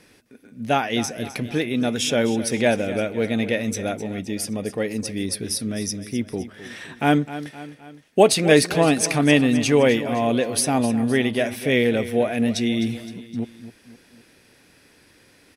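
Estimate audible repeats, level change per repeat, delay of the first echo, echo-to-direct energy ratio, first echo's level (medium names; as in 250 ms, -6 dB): 3, -5.5 dB, 258 ms, -12.5 dB, -14.0 dB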